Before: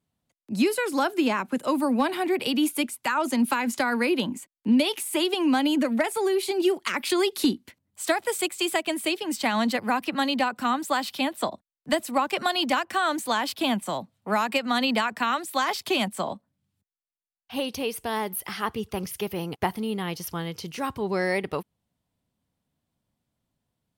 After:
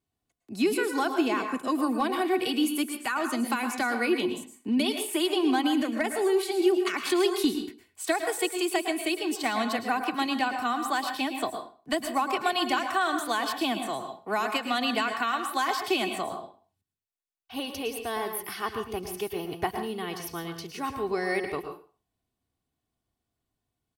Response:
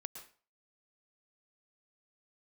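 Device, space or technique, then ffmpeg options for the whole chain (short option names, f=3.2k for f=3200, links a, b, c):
microphone above a desk: -filter_complex "[0:a]aecho=1:1:2.7:0.53[a];[1:a]atrim=start_sample=2205[b];[a][b]afir=irnorm=-1:irlink=0"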